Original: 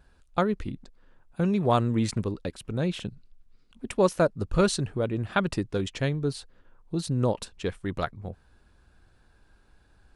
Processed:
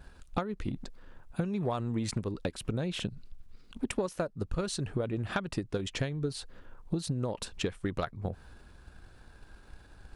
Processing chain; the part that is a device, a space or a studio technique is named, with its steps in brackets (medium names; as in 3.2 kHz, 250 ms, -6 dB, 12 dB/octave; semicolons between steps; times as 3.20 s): drum-bus smash (transient shaper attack +8 dB, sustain +4 dB; compression 12:1, threshold -32 dBFS, peak gain reduction 21.5 dB; saturation -23 dBFS, distortion -21 dB); trim +4.5 dB